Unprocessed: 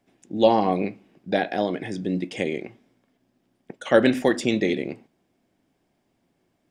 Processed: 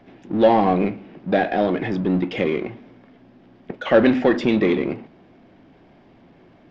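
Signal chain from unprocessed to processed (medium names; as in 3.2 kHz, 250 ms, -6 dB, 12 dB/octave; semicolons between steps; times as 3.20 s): power-law waveshaper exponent 0.7; Gaussian low-pass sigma 2.3 samples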